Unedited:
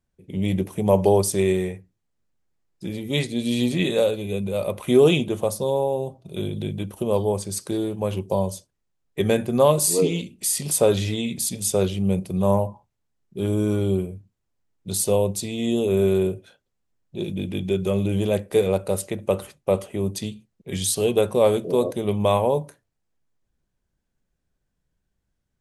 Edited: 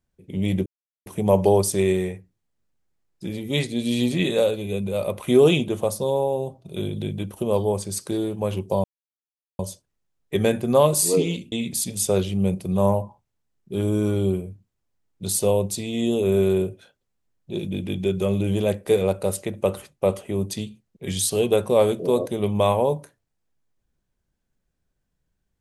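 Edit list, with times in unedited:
0.66 insert silence 0.40 s
8.44 insert silence 0.75 s
10.37–11.17 cut

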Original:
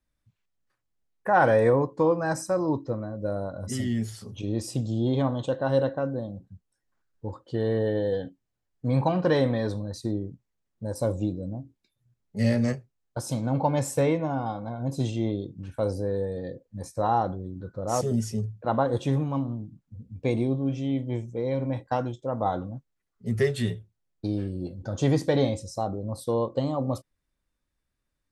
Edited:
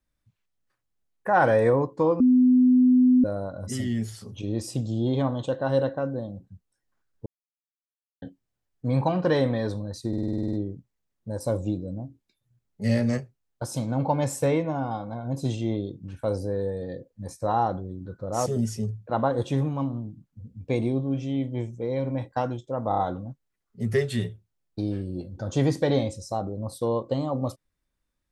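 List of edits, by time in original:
2.2–3.24 bleep 252 Hz -14 dBFS
7.26–8.22 mute
10.08 stutter 0.05 s, 10 plays
22.44 stutter 0.03 s, 4 plays

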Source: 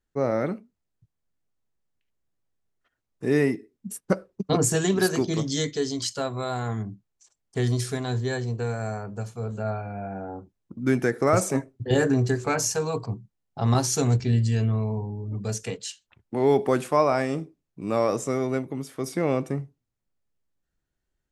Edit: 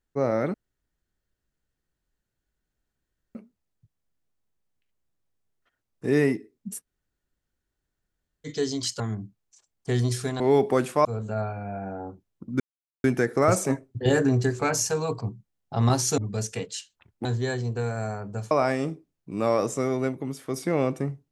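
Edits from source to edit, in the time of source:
0.54 insert room tone 2.81 s
4.04–5.66 room tone, crossfade 0.06 s
6.19–6.68 cut
8.08–9.34 swap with 16.36–17.01
10.89 insert silence 0.44 s
14.03–15.29 cut

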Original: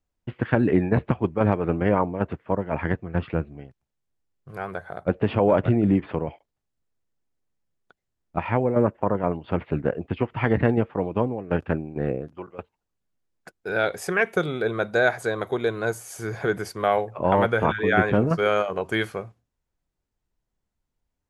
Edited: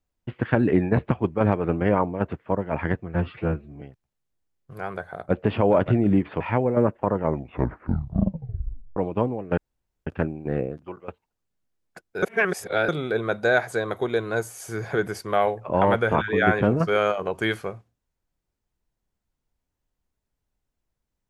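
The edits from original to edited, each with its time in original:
3.14–3.59 stretch 1.5×
6.18–8.4 cut
9.1 tape stop 1.86 s
11.57 insert room tone 0.49 s
13.73–14.39 reverse

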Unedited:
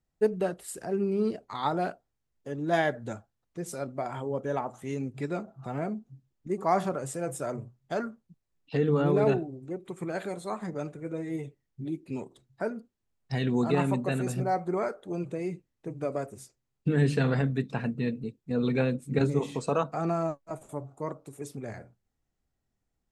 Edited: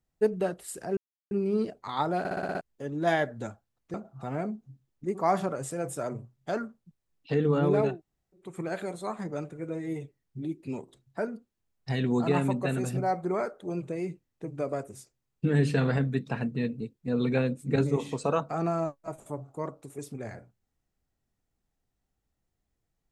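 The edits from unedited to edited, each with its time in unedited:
0.97 insert silence 0.34 s
1.85 stutter in place 0.06 s, 7 plays
3.6–5.37 cut
9.33–9.87 room tone, crossfade 0.24 s

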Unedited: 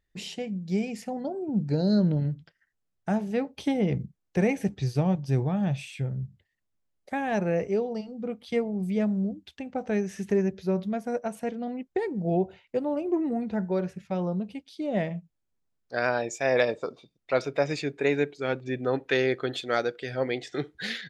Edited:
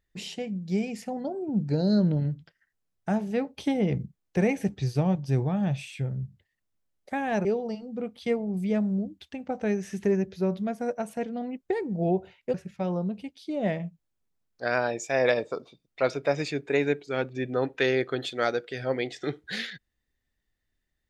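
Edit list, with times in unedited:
7.45–7.71 cut
12.8–13.85 cut

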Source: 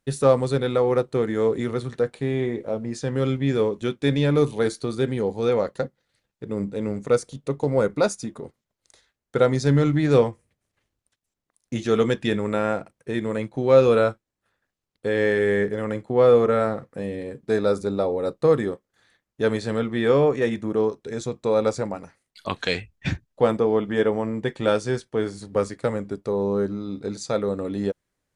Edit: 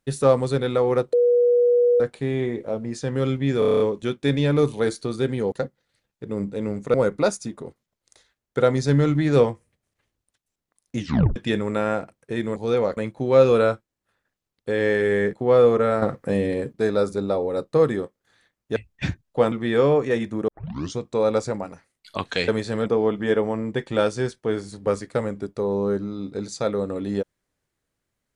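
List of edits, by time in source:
1.13–2 bleep 484 Hz -14 dBFS
3.59 stutter 0.03 s, 8 plays
5.31–5.72 move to 13.34
7.14–7.72 cut
11.77 tape stop 0.37 s
15.7–16.02 cut
16.71–17.42 gain +7.5 dB
19.45–19.83 swap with 22.79–23.55
20.79 tape start 0.50 s

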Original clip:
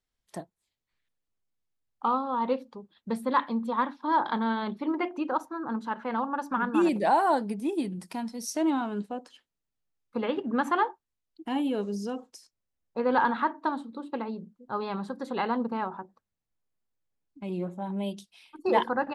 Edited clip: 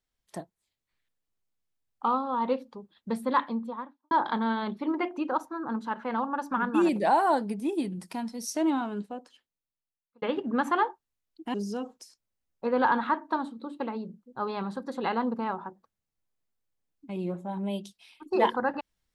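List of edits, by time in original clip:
3.33–4.11 studio fade out
8.71–10.22 fade out
11.54–11.87 cut

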